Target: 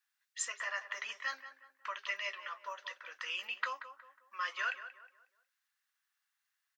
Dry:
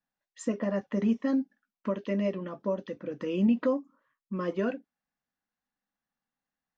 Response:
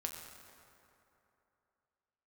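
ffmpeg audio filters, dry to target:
-filter_complex "[0:a]highpass=frequency=1300:width=0.5412,highpass=frequency=1300:width=1.3066,asplit=2[link_01][link_02];[link_02]adelay=182,lowpass=frequency=1900:poles=1,volume=-10.5dB,asplit=2[link_03][link_04];[link_04]adelay=182,lowpass=frequency=1900:poles=1,volume=0.41,asplit=2[link_05][link_06];[link_06]adelay=182,lowpass=frequency=1900:poles=1,volume=0.41,asplit=2[link_07][link_08];[link_08]adelay=182,lowpass=frequency=1900:poles=1,volume=0.41[link_09];[link_01][link_03][link_05][link_07][link_09]amix=inputs=5:normalize=0,volume=8dB"

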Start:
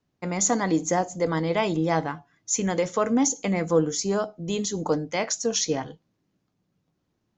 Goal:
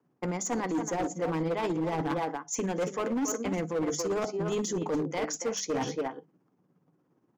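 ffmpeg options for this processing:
ffmpeg -i in.wav -filter_complex "[0:a]equalizer=frequency=200:width_type=o:width=0.33:gain=-5,equalizer=frequency=630:width_type=o:width=0.33:gain=-6,equalizer=frequency=4000:width_type=o:width=0.33:gain=-8,asplit=2[link_01][link_02];[link_02]adelay=280,highpass=300,lowpass=3400,asoftclip=type=hard:threshold=-21dB,volume=-8dB[link_03];[link_01][link_03]amix=inputs=2:normalize=0,areverse,acompressor=threshold=-31dB:ratio=16,areverse,tremolo=f=17:d=0.46,acrossover=split=1400[link_04][link_05];[link_04]acontrast=67[link_06];[link_05]agate=range=-9dB:threshold=-60dB:ratio=16:detection=peak[link_07];[link_06][link_07]amix=inputs=2:normalize=0,highpass=frequency=140:width=0.5412,highpass=frequency=140:width=1.3066,bandreject=frequency=50:width_type=h:width=6,bandreject=frequency=100:width_type=h:width=6,bandreject=frequency=150:width_type=h:width=6,bandreject=frequency=200:width_type=h:width=6,volume=29dB,asoftclip=hard,volume=-29dB,volume=3.5dB" out.wav

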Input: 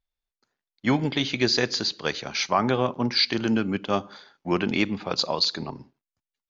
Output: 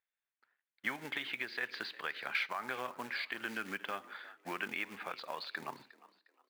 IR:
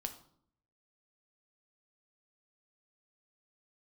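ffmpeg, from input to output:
-filter_complex "[0:a]acompressor=threshold=-26dB:ratio=6,alimiter=limit=-20dB:level=0:latency=1:release=323,lowpass=frequency=3300:width=0.5412,lowpass=frequency=3300:width=1.3066,acrusher=bits=5:mode=log:mix=0:aa=0.000001,highpass=frequency=930:poles=1,equalizer=frequency=1700:width_type=o:width=1.1:gain=10,asplit=4[link_01][link_02][link_03][link_04];[link_02]adelay=357,afreqshift=60,volume=-19dB[link_05];[link_03]adelay=714,afreqshift=120,volume=-28.6dB[link_06];[link_04]adelay=1071,afreqshift=180,volume=-38.3dB[link_07];[link_01][link_05][link_06][link_07]amix=inputs=4:normalize=0,volume=-4dB"

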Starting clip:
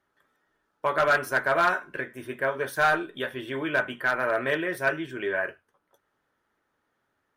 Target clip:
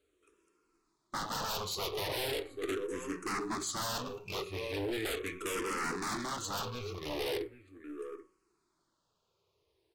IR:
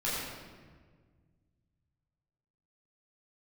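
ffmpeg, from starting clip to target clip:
-filter_complex "[0:a]highshelf=frequency=12000:gain=-11,asplit=2[link_01][link_02];[link_02]adelay=583.1,volume=-16dB,highshelf=frequency=4000:gain=-13.1[link_03];[link_01][link_03]amix=inputs=2:normalize=0,aeval=exprs='(tanh(35.5*val(0)+0.4)-tanh(0.4))/35.5':channel_layout=same,bandreject=frequency=250.4:width_type=h:width=4,bandreject=frequency=500.8:width_type=h:width=4,bandreject=frequency=751.2:width_type=h:width=4,bandreject=frequency=1001.6:width_type=h:width=4,bandreject=frequency=1252:width_type=h:width=4,bandreject=frequency=1502.4:width_type=h:width=4,bandreject=frequency=1752.8:width_type=h:width=4,bandreject=frequency=2003.2:width_type=h:width=4,aeval=exprs='0.0501*(cos(1*acos(clip(val(0)/0.0501,-1,1)))-cos(1*PI/2))+0.0112*(cos(3*acos(clip(val(0)/0.0501,-1,1)))-cos(3*PI/2))+0.002*(cos(5*acos(clip(val(0)/0.0501,-1,1)))-cos(5*PI/2))+0.00251*(cos(6*acos(clip(val(0)/0.0501,-1,1)))-cos(6*PI/2))':channel_layout=same,firequalizer=gain_entry='entry(110,0);entry(320,-12);entry(490,9);entry(930,-11);entry(4900,8)':delay=0.05:min_phase=1,aeval=exprs='0.0126*(abs(mod(val(0)/0.0126+3,4)-2)-1)':channel_layout=same,asplit=2[link_04][link_05];[link_05]acrusher=bits=4:mode=log:mix=0:aa=0.000001,volume=-10dB[link_06];[link_04][link_06]amix=inputs=2:normalize=0,asetrate=32667,aresample=44100,asplit=2[link_07][link_08];[link_08]afreqshift=-0.39[link_09];[link_07][link_09]amix=inputs=2:normalize=1,volume=8dB"

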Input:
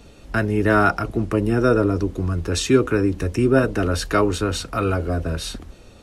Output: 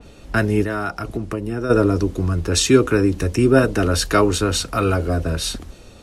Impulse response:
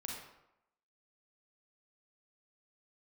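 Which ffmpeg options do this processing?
-filter_complex "[0:a]asplit=3[link_01][link_02][link_03];[link_01]afade=type=out:start_time=0.63:duration=0.02[link_04];[link_02]acompressor=threshold=-25dB:ratio=4,afade=type=in:start_time=0.63:duration=0.02,afade=type=out:start_time=1.69:duration=0.02[link_05];[link_03]afade=type=in:start_time=1.69:duration=0.02[link_06];[link_04][link_05][link_06]amix=inputs=3:normalize=0,adynamicequalizer=threshold=0.0126:dfrequency=3400:dqfactor=0.7:tfrequency=3400:tqfactor=0.7:attack=5:release=100:ratio=0.375:range=2.5:mode=boostabove:tftype=highshelf,volume=2.5dB"

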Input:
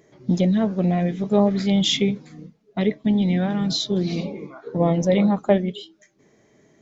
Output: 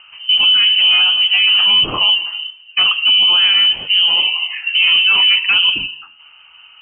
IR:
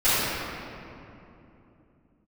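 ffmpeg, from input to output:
-filter_complex "[0:a]asplit=2[link_01][link_02];[link_02]equalizer=frequency=460:width_type=o:width=0.77:gain=14.5[link_03];[1:a]atrim=start_sample=2205,afade=type=out:start_time=0.39:duration=0.01,atrim=end_sample=17640[link_04];[link_03][link_04]afir=irnorm=-1:irlink=0,volume=-39.5dB[link_05];[link_01][link_05]amix=inputs=2:normalize=0,apsyclip=22dB,bandreject=frequency=147.8:width_type=h:width=4,bandreject=frequency=295.6:width_type=h:width=4,bandreject=frequency=443.4:width_type=h:width=4,bandreject=frequency=591.2:width_type=h:width=4,bandreject=frequency=739:width_type=h:width=4,bandreject=frequency=886.8:width_type=h:width=4,bandreject=frequency=1034.6:width_type=h:width=4,bandreject=frequency=1182.4:width_type=h:width=4,bandreject=frequency=1330.2:width_type=h:width=4,bandreject=frequency=1478:width_type=h:width=4,bandreject=frequency=1625.8:width_type=h:width=4,bandreject=frequency=1773.6:width_type=h:width=4,bandreject=frequency=1921.4:width_type=h:width=4,bandreject=frequency=2069.2:width_type=h:width=4,bandreject=frequency=2217:width_type=h:width=4,bandreject=frequency=2364.8:width_type=h:width=4,bandreject=frequency=2512.6:width_type=h:width=4,bandreject=frequency=2660.4:width_type=h:width=4,bandreject=frequency=2808.2:width_type=h:width=4,lowpass=frequency=2700:width_type=q:width=0.5098,lowpass=frequency=2700:width_type=q:width=0.6013,lowpass=frequency=2700:width_type=q:width=0.9,lowpass=frequency=2700:width_type=q:width=2.563,afreqshift=-3200,volume=-8dB"

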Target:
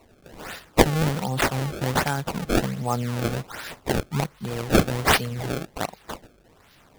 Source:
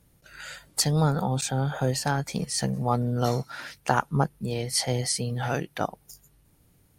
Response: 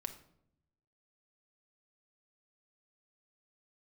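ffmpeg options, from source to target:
-af "aemphasis=mode=production:type=75kf,acrusher=samples=26:mix=1:aa=0.000001:lfo=1:lforange=41.6:lforate=1.3,volume=-1dB"

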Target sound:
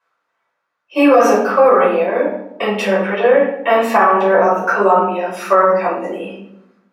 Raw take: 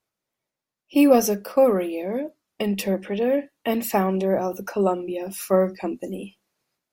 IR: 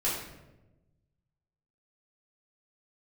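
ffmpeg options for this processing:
-filter_complex "[0:a]bandpass=frequency=1300:width_type=q:width=2.5:csg=0[link_01];[1:a]atrim=start_sample=2205,asetrate=61740,aresample=44100[link_02];[link_01][link_02]afir=irnorm=-1:irlink=0,alimiter=level_in=19.5dB:limit=-1dB:release=50:level=0:latency=1,volume=-1dB"

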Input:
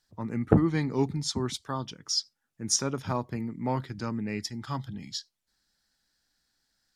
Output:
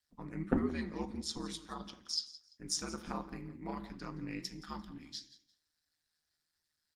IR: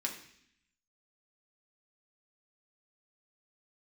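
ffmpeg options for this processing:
-filter_complex "[0:a]equalizer=frequency=430:width=0.7:gain=-5.5,aeval=exprs='val(0)*sin(2*PI*78*n/s)':channel_layout=same,aecho=1:1:172|344:0.141|0.0367,asplit=2[link_01][link_02];[1:a]atrim=start_sample=2205,afade=type=out:start_time=0.28:duration=0.01,atrim=end_sample=12789[link_03];[link_02][link_03]afir=irnorm=-1:irlink=0,volume=-3.5dB[link_04];[link_01][link_04]amix=inputs=2:normalize=0,flanger=delay=2.5:depth=4.4:regen=81:speed=1.5:shape=sinusoidal,asettb=1/sr,asplit=3[link_05][link_06][link_07];[link_05]atrim=end=2.634[link_08];[link_06]atrim=start=2.63:end=3.56,asetpts=PTS-STARTPTS,afade=type=in:duration=0.004:curve=qsin,afade=type=out:start_time=0.926:duration=0.004:curve=qsin,aeval=exprs='val(0)+0.000631*(sin(2*PI*60*n/s)+sin(2*PI*2*60*n/s)/2+sin(2*PI*3*60*n/s)/3+sin(2*PI*4*60*n/s)/4+sin(2*PI*5*60*n/s)/5)':channel_layout=same[link_09];[link_07]atrim=start=3.556[link_10];[link_08][link_09]acrossfade=duration=0.004:curve1=hsin:curve2=qsin[link_11];[link_11][link_10]acrossfade=duration=0.004:curve1=qsin:curve2=hsin,volume=-3dB" -ar 48000 -c:a libopus -b:a 24k

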